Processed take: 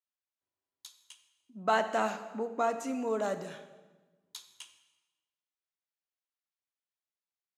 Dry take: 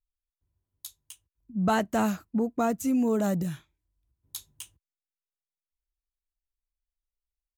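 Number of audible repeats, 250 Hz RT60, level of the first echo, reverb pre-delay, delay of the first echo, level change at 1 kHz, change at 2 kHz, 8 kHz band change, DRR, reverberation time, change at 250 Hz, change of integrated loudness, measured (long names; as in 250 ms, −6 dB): no echo audible, 1.5 s, no echo audible, 4 ms, no echo audible, −0.5 dB, 0.0 dB, −7.0 dB, 8.0 dB, 1.3 s, −12.5 dB, −4.5 dB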